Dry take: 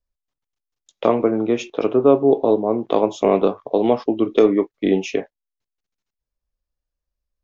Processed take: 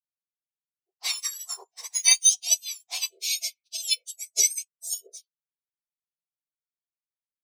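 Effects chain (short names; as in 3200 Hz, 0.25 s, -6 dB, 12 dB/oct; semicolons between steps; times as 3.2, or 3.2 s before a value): spectrum mirrored in octaves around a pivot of 1600 Hz; spectral delete 3.09–5.87, 680–2100 Hz; upward expander 2.5:1, over -42 dBFS; gain +3 dB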